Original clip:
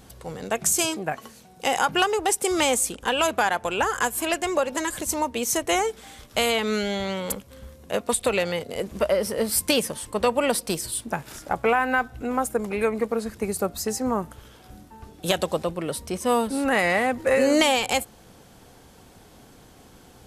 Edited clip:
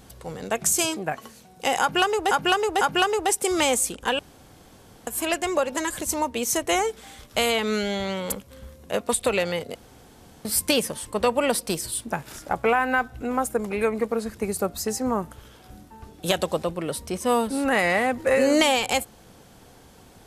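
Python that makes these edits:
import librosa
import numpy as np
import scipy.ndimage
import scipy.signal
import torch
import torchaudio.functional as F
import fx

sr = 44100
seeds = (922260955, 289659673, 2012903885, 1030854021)

y = fx.edit(x, sr, fx.repeat(start_s=1.81, length_s=0.5, count=3),
    fx.room_tone_fill(start_s=3.19, length_s=0.88),
    fx.room_tone_fill(start_s=8.75, length_s=0.7), tone=tone)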